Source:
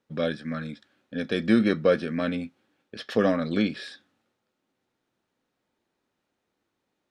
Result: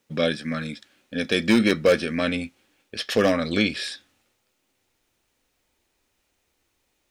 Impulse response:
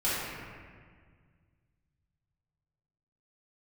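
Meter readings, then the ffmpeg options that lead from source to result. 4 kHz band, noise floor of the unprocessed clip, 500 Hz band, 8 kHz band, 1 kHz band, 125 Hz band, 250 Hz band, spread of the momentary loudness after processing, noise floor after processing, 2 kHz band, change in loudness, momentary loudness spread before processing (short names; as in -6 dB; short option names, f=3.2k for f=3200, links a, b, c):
+9.5 dB, -80 dBFS, +3.0 dB, n/a, +3.0 dB, +1.5 dB, +1.5 dB, 16 LU, -73 dBFS, +6.5 dB, +2.5 dB, 18 LU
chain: -af "asubboost=boost=9.5:cutoff=56,asoftclip=type=hard:threshold=-14.5dB,aexciter=amount=2.3:drive=4.6:freq=2.1k,volume=4dB"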